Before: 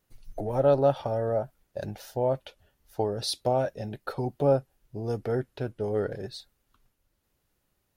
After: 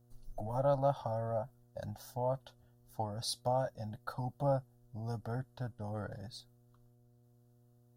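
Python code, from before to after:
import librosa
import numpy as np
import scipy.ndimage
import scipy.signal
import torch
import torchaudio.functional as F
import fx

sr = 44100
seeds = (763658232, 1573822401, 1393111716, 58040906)

y = fx.fixed_phaser(x, sr, hz=960.0, stages=4)
y = fx.dmg_buzz(y, sr, base_hz=120.0, harmonics=6, level_db=-62.0, tilt_db=-8, odd_only=False)
y = y * 10.0 ** (-4.0 / 20.0)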